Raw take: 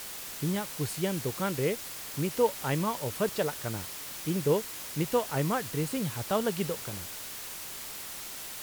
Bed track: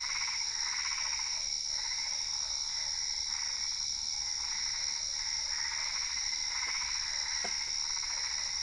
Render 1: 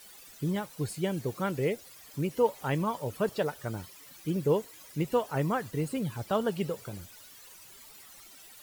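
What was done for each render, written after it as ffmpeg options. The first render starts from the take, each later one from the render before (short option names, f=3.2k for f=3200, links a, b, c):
-af "afftdn=nr=15:nf=-41"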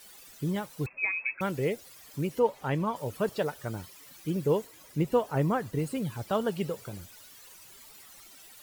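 -filter_complex "[0:a]asettb=1/sr,asplit=3[a][b][c];[a]atrim=end=0.864[d];[b]atrim=start=0.86:end=1.41,asetpts=PTS-STARTPTS,afade=t=in:d=0.004:c=qsin,afade=t=out:st=0.546:d=0.004:c=qsin,lowpass=f=2.3k:t=q:w=0.5098,lowpass=f=2.3k:t=q:w=0.6013,lowpass=f=2.3k:t=q:w=0.9,lowpass=f=2.3k:t=q:w=2.563,afreqshift=-2700[e];[c]atrim=start=1.406[f];[d][e]acrossfade=d=0.004:c1=hsin:c2=qsin[g];[g][f]acrossfade=d=0.004:c1=qsin:c2=hsin,asettb=1/sr,asplit=3[h][i][j];[h]atrim=end=2.394[k];[i]atrim=start=2.39:end=2.96,asetpts=PTS-STARTPTS,afade=t=in:d=0.004:c=qsin,afade=t=out:st=0.566:d=0.004:c=qsin,aemphasis=mode=reproduction:type=cd[l];[j]atrim=start=2.956[m];[k][l]acrossfade=d=0.004:c1=hsin:c2=qsin[n];[n][m]acrossfade=d=0.004:c1=qsin:c2=hsin,asettb=1/sr,asplit=3[o][p][q];[o]atrim=end=4.674[r];[p]atrim=start=4.67:end=5.79,asetpts=PTS-STARTPTS,afade=t=in:d=0.004:c=qsin,afade=t=out:st=1.116:d=0.004:c=qsin,tiltshelf=f=1.2k:g=3[s];[q]atrim=start=5.786[t];[r][s]acrossfade=d=0.004:c1=hsin:c2=qsin[u];[u][t]acrossfade=d=0.004:c1=qsin:c2=hsin"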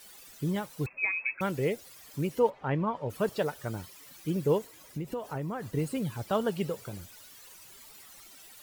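-filter_complex "[0:a]asplit=3[a][b][c];[a]afade=t=out:st=2.49:d=0.02[d];[b]lowpass=2.5k,afade=t=in:st=2.49:d=0.02,afade=t=out:st=3.09:d=0.02[e];[c]afade=t=in:st=3.09:d=0.02[f];[d][e][f]amix=inputs=3:normalize=0,asettb=1/sr,asplit=3[g][h][i];[g]atrim=end=4.584[j];[h]atrim=start=4.58:end=5.69,asetpts=PTS-STARTPTS,afade=t=in:d=0.004:c=qsin,afade=t=out:st=1.106:d=0.004:c=qsin,acompressor=threshold=-31dB:ratio=6:attack=3.2:release=140:knee=1:detection=peak[k];[i]atrim=start=5.686[l];[j][k]acrossfade=d=0.004:c1=hsin:c2=qsin[m];[m][l]acrossfade=d=0.004:c1=qsin:c2=hsin"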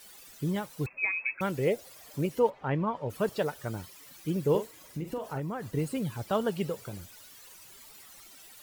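-filter_complex "[0:a]asettb=1/sr,asplit=3[a][b][c];[a]atrim=end=1.674[d];[b]atrim=start=1.67:end=2.26,asetpts=PTS-STARTPTS,afade=t=in:d=0.004:c=qsin,afade=t=out:st=0.586:d=0.004:c=qsin,equalizer=f=610:w=1.5:g=8[e];[c]atrim=start=2.256[f];[d][e]acrossfade=d=0.004:c1=hsin:c2=qsin[g];[g][f]acrossfade=d=0.004:c1=qsin:c2=hsin,asettb=1/sr,asplit=3[h][i][j];[h]atrim=end=4.504[k];[i]atrim=start=4.5:end=5.4,asetpts=PTS-STARTPTS,afade=t=in:d=0.004:c=qsin,afade=t=out:st=0.896:d=0.004:c=qsin,asplit=2[l][m];[m]adelay=44,volume=-8.5dB[n];[l][n]amix=inputs=2:normalize=0,atrim=end_sample=39690[o];[j]atrim=start=5.396[p];[k][o]acrossfade=d=0.004:c1=hsin:c2=qsin[q];[q][p]acrossfade=d=0.004:c1=qsin:c2=hsin"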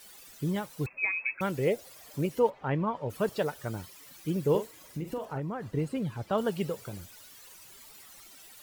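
-filter_complex "[0:a]asettb=1/sr,asplit=3[a][b][c];[a]atrim=end=5.254[d];[b]atrim=start=5.25:end=6.38,asetpts=PTS-STARTPTS,afade=t=in:d=0.004:c=qsin,afade=t=out:st=1.126:d=0.004:c=qsin,lowpass=f=2.9k:p=1[e];[c]atrim=start=6.376[f];[d][e]acrossfade=d=0.004:c1=hsin:c2=qsin[g];[g][f]acrossfade=d=0.004:c1=qsin:c2=hsin"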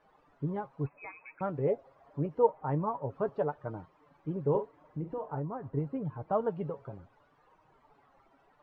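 -af "flanger=delay=6.4:depth=1:regen=45:speed=0.79:shape=sinusoidal,lowpass=f=970:t=q:w=1.6"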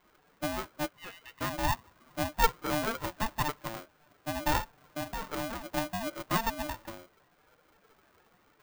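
-af "aeval=exprs='val(0)*sgn(sin(2*PI*450*n/s))':c=same"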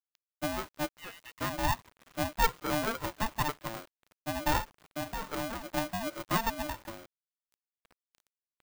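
-af "asoftclip=type=hard:threshold=-19dB,acrusher=bits=8:mix=0:aa=0.000001"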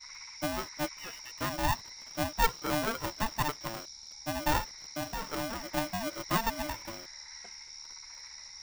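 -filter_complex "[1:a]volume=-12.5dB[a];[0:a][a]amix=inputs=2:normalize=0"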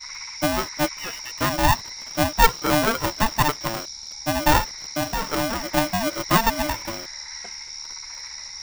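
-af "volume=11dB"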